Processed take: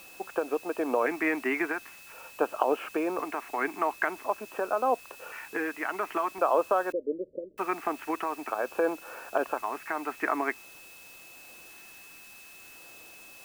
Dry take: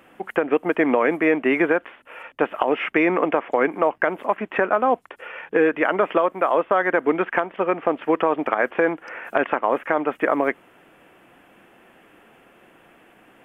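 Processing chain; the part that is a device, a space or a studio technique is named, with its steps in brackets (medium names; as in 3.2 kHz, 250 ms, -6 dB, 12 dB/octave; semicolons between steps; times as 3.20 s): shortwave radio (band-pass 340–2600 Hz; tremolo 0.77 Hz, depth 45%; LFO notch square 0.47 Hz 530–2000 Hz; whistle 2.6 kHz -47 dBFS; white noise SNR 21 dB); 6.92–7.58 s: Chebyshev low-pass 600 Hz, order 10; trim -3.5 dB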